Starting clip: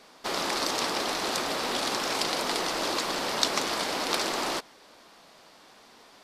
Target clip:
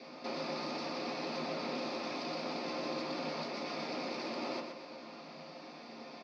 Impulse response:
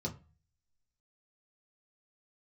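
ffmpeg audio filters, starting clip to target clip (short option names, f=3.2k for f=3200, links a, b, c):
-filter_complex "[0:a]acompressor=threshold=-38dB:ratio=6,asoftclip=type=tanh:threshold=-39dB,highpass=f=170:w=0.5412,highpass=f=170:w=1.3066,equalizer=f=390:t=q:w=4:g=-7,equalizer=f=570:t=q:w=4:g=4,equalizer=f=2.4k:t=q:w=4:g=6,equalizer=f=3.9k:t=q:w=4:g=-4,lowpass=f=5k:w=0.5412,lowpass=f=5k:w=1.3066,aecho=1:1:123|246|369|492|615:0.473|0.189|0.0757|0.0303|0.0121[a];[1:a]atrim=start_sample=2205[b];[a][b]afir=irnorm=-1:irlink=0,volume=1dB"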